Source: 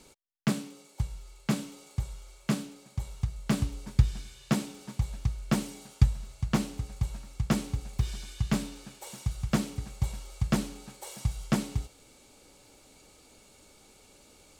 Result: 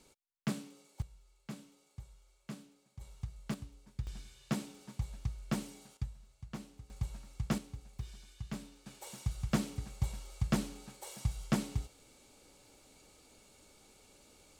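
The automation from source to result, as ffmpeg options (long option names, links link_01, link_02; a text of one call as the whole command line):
ffmpeg -i in.wav -af "asetnsamples=nb_out_samples=441:pad=0,asendcmd='1.02 volume volume -17dB;3.01 volume volume -11dB;3.54 volume volume -18dB;4.07 volume volume -8dB;5.97 volume volume -17.5dB;6.9 volume volume -7dB;7.58 volume volume -14dB;8.86 volume volume -4.5dB',volume=-8dB" out.wav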